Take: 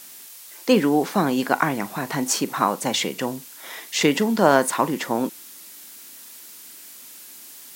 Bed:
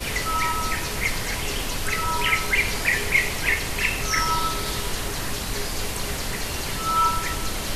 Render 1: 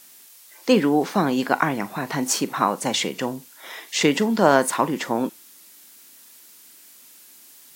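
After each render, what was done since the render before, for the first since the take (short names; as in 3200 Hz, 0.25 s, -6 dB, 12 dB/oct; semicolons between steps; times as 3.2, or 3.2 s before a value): noise print and reduce 6 dB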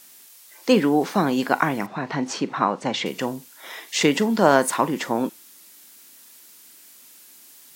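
1.86–3.06 air absorption 140 m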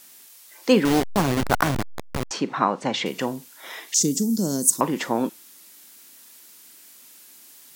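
0.85–2.31 level-crossing sampler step -17 dBFS; 3.94–4.81 EQ curve 240 Hz 0 dB, 450 Hz -10 dB, 750 Hz -24 dB, 1600 Hz -27 dB, 2600 Hz -27 dB, 5900 Hz +9 dB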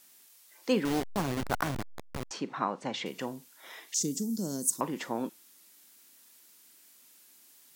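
gain -10 dB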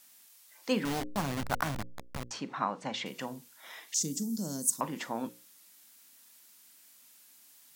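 bell 380 Hz -7 dB 0.66 oct; notches 60/120/180/240/300/360/420/480/540 Hz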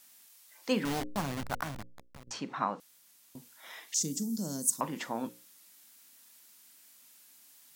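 1.02–2.27 fade out, to -15 dB; 2.8–3.35 room tone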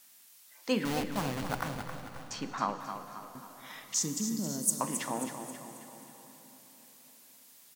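feedback echo 0.268 s, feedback 46%, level -9 dB; plate-style reverb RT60 4.7 s, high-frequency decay 0.85×, pre-delay 0 ms, DRR 9.5 dB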